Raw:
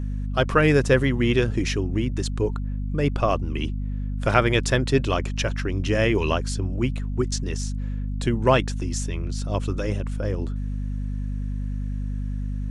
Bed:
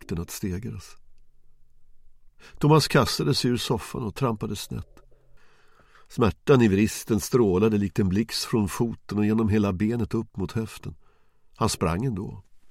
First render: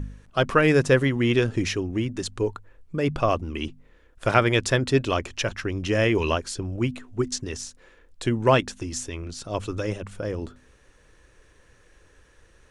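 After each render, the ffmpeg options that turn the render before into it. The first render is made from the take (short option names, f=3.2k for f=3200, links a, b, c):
-af "bandreject=f=50:t=h:w=4,bandreject=f=100:t=h:w=4,bandreject=f=150:t=h:w=4,bandreject=f=200:t=h:w=4,bandreject=f=250:t=h:w=4"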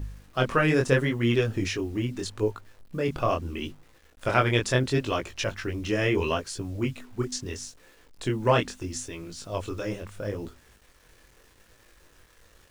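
-af "acrusher=bits=8:mix=0:aa=0.000001,flanger=delay=17.5:depth=7.6:speed=0.76"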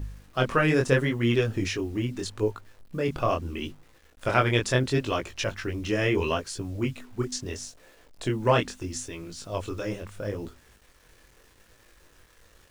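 -filter_complex "[0:a]asettb=1/sr,asplit=3[a][b][c];[a]atrim=end=7.424[d];[b]atrim=start=7.42:end=8.28,asetpts=PTS-STARTPTS,afade=t=in:d=0.004:c=qsin,afade=t=out:st=0.856:d=0.004:c=qsin,equalizer=f=640:t=o:w=0.5:g=7[e];[c]atrim=start=8.276[f];[d][e]acrossfade=d=0.004:c1=hsin:c2=qsin[g];[g][f]acrossfade=d=0.004:c1=qsin:c2=hsin"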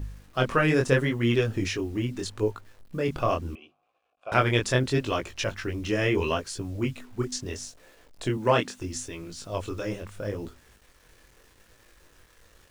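-filter_complex "[0:a]asettb=1/sr,asplit=3[a][b][c];[a]atrim=end=3.554[d];[b]atrim=start=3.55:end=4.32,asetpts=PTS-STARTPTS,afade=t=in:d=0.004:c=qsin,afade=t=out:st=0.766:d=0.004:c=qsin,asplit=3[e][f][g];[e]bandpass=f=730:t=q:w=8,volume=0dB[h];[f]bandpass=f=1.09k:t=q:w=8,volume=-6dB[i];[g]bandpass=f=2.44k:t=q:w=8,volume=-9dB[j];[h][i][j]amix=inputs=3:normalize=0[k];[c]atrim=start=4.316[l];[d][k]acrossfade=d=0.004:c1=hsin:c2=qsin[m];[m][l]acrossfade=d=0.004:c1=qsin:c2=hsin,asettb=1/sr,asplit=3[n][o][p];[n]atrim=end=8.374[q];[o]atrim=start=8.37:end=8.78,asetpts=PTS-STARTPTS,afade=t=in:d=0.004:c=qsin,afade=t=out:st=0.406:d=0.004:c=qsin,highpass=130[r];[p]atrim=start=8.776[s];[q][r]acrossfade=d=0.004:c1=hsin:c2=qsin[t];[t][s]acrossfade=d=0.004:c1=qsin:c2=hsin"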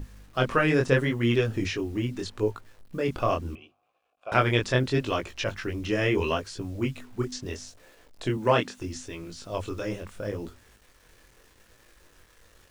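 -filter_complex "[0:a]acrossover=split=5700[a][b];[b]acompressor=threshold=-50dB:ratio=4:attack=1:release=60[c];[a][c]amix=inputs=2:normalize=0,bandreject=f=50:t=h:w=6,bandreject=f=100:t=h:w=6,bandreject=f=150:t=h:w=6"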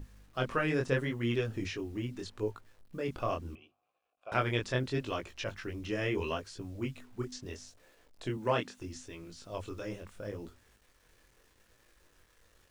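-af "volume=-8dB"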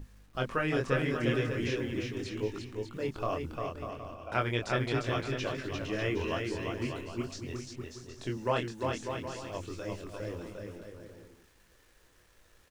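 -af "aecho=1:1:350|595|766.5|886.6|970.6:0.631|0.398|0.251|0.158|0.1"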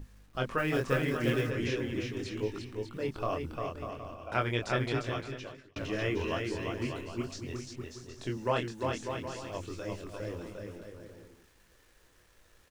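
-filter_complex "[0:a]asplit=3[a][b][c];[a]afade=t=out:st=0.57:d=0.02[d];[b]acrusher=bits=6:mode=log:mix=0:aa=0.000001,afade=t=in:st=0.57:d=0.02,afade=t=out:st=1.49:d=0.02[e];[c]afade=t=in:st=1.49:d=0.02[f];[d][e][f]amix=inputs=3:normalize=0,asettb=1/sr,asplit=3[g][h][i];[g]atrim=end=2.454[j];[h]atrim=start=2.45:end=3.62,asetpts=PTS-STARTPTS,afade=t=in:d=0.004:c=qsin,afade=t=out:st=1.166:d=0.004:c=qsin,bandreject=f=6.8k:w=12[k];[i]atrim=start=3.616[l];[j][k]acrossfade=d=0.004:c1=hsin:c2=qsin[m];[m][l]acrossfade=d=0.004:c1=qsin:c2=hsin,asplit=2[n][o];[n]atrim=end=5.76,asetpts=PTS-STARTPTS,afade=t=out:st=4.86:d=0.9[p];[o]atrim=start=5.76,asetpts=PTS-STARTPTS,afade=t=in:d=0.004:c=hsin[q];[p][q]concat=n=2:v=0:a=1"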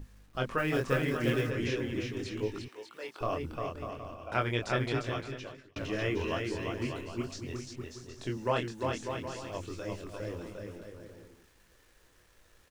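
-filter_complex "[0:a]asettb=1/sr,asplit=3[a][b][c];[a]atrim=end=2.684[d];[b]atrim=start=2.68:end=3.21,asetpts=PTS-STARTPTS,afade=t=in:d=0.004:c=qsin,afade=t=out:st=0.526:d=0.004:c=qsin,highpass=670[e];[c]atrim=start=3.206[f];[d][e]acrossfade=d=0.004:c1=hsin:c2=qsin[g];[g][f]acrossfade=d=0.004:c1=qsin:c2=hsin"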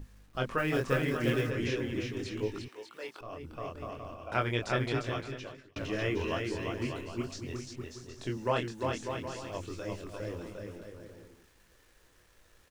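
-filter_complex "[0:a]asplit=2[a][b];[a]atrim=end=3.21,asetpts=PTS-STARTPTS,afade=t=out:st=3.206:d=0.004:c=hsin:silence=0.177828[c];[b]atrim=start=3.21,asetpts=PTS-STARTPTS,afade=t=in:d=1.05:c=qsin:silence=0.177828[d];[c][d]concat=n=2:v=0:a=1"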